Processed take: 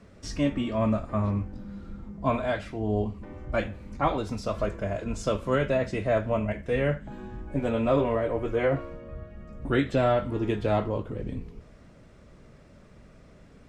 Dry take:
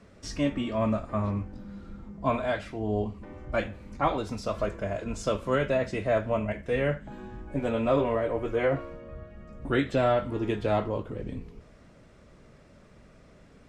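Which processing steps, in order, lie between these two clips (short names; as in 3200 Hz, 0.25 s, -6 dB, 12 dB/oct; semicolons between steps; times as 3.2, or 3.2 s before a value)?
low shelf 250 Hz +3.5 dB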